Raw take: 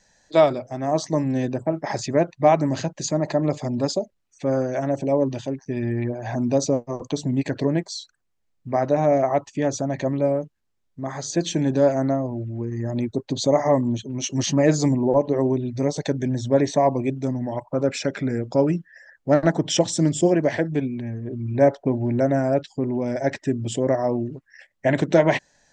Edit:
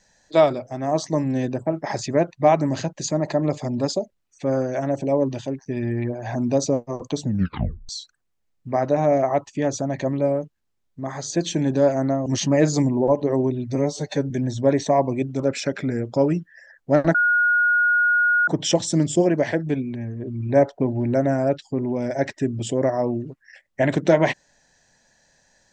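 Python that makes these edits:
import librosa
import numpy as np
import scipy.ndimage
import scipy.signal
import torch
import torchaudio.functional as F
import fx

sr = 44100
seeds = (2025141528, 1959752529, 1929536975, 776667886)

y = fx.edit(x, sr, fx.tape_stop(start_s=7.22, length_s=0.67),
    fx.cut(start_s=12.26, length_s=2.06),
    fx.stretch_span(start_s=15.81, length_s=0.37, factor=1.5),
    fx.cut(start_s=17.27, length_s=0.51),
    fx.insert_tone(at_s=19.53, length_s=1.33, hz=1440.0, db=-15.0), tone=tone)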